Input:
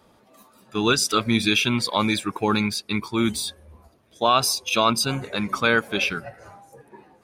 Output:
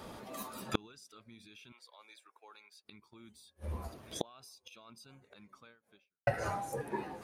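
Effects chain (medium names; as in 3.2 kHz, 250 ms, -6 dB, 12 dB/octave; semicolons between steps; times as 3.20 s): 1.72–2.84 s: high-pass 490 Hz 24 dB/octave; 5.65–6.27 s: fade out exponential; peak limiter -14 dBFS, peak gain reduction 8.5 dB; inverted gate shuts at -25 dBFS, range -40 dB; trim +9 dB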